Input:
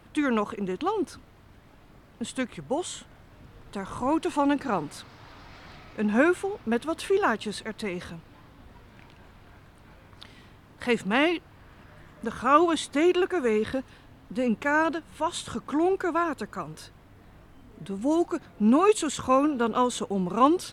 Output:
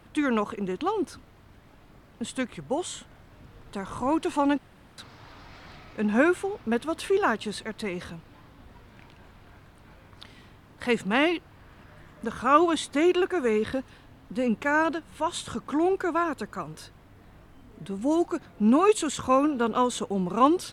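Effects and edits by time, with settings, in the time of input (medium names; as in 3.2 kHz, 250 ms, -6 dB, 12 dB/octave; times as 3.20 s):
4.58–4.98 s: room tone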